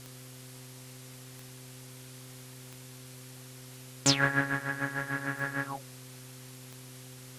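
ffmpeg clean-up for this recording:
ffmpeg -i in.wav -af "adeclick=threshold=4,bandreject=frequency=128:width_type=h:width=4,bandreject=frequency=256:width_type=h:width=4,bandreject=frequency=384:width_type=h:width=4,bandreject=frequency=512:width_type=h:width=4,afwtdn=0.0032" out.wav

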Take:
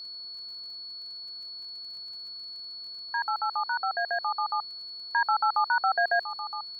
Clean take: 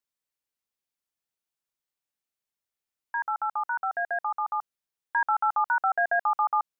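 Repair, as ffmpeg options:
ffmpeg -i in.wav -af "adeclick=threshold=4,bandreject=frequency=4400:width=30,agate=range=-21dB:threshold=-33dB,asetnsamples=nb_out_samples=441:pad=0,asendcmd='6.23 volume volume 11.5dB',volume=0dB" out.wav

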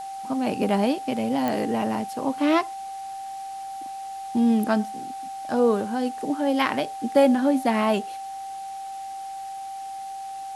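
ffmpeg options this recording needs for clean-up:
ffmpeg -i in.wav -af "adeclick=threshold=4,bandreject=frequency=780:width=30,afwtdn=0.004" out.wav

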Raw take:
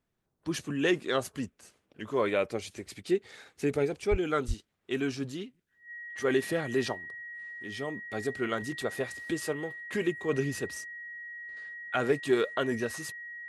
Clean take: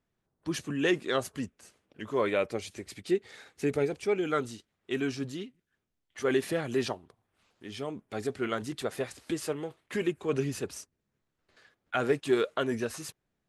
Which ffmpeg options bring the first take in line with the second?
ffmpeg -i in.wav -filter_complex "[0:a]bandreject=frequency=1900:width=30,asplit=3[link_01][link_02][link_03];[link_01]afade=type=out:start_time=4.1:duration=0.02[link_04];[link_02]highpass=frequency=140:width=0.5412,highpass=frequency=140:width=1.3066,afade=type=in:start_time=4.1:duration=0.02,afade=type=out:start_time=4.22:duration=0.02[link_05];[link_03]afade=type=in:start_time=4.22:duration=0.02[link_06];[link_04][link_05][link_06]amix=inputs=3:normalize=0,asplit=3[link_07][link_08][link_09];[link_07]afade=type=out:start_time=4.47:duration=0.02[link_10];[link_08]highpass=frequency=140:width=0.5412,highpass=frequency=140:width=1.3066,afade=type=in:start_time=4.47:duration=0.02,afade=type=out:start_time=4.59:duration=0.02[link_11];[link_09]afade=type=in:start_time=4.59:duration=0.02[link_12];[link_10][link_11][link_12]amix=inputs=3:normalize=0" out.wav

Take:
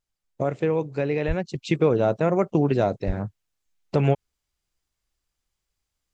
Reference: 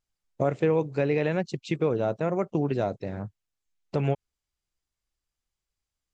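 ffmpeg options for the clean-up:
ffmpeg -i in.wav -filter_complex "[0:a]asplit=3[link_01][link_02][link_03];[link_01]afade=type=out:start_time=1.27:duration=0.02[link_04];[link_02]highpass=frequency=140:width=0.5412,highpass=frequency=140:width=1.3066,afade=type=in:start_time=1.27:duration=0.02,afade=type=out:start_time=1.39:duration=0.02[link_05];[link_03]afade=type=in:start_time=1.39:duration=0.02[link_06];[link_04][link_05][link_06]amix=inputs=3:normalize=0,asplit=3[link_07][link_08][link_09];[link_07]afade=type=out:start_time=3.06:duration=0.02[link_10];[link_08]highpass=frequency=140:width=0.5412,highpass=frequency=140:width=1.3066,afade=type=in:start_time=3.06:duration=0.02,afade=type=out:start_time=3.18:duration=0.02[link_11];[link_09]afade=type=in:start_time=3.18:duration=0.02[link_12];[link_10][link_11][link_12]amix=inputs=3:normalize=0,asetnsamples=nb_out_samples=441:pad=0,asendcmd='1.55 volume volume -5.5dB',volume=0dB" out.wav

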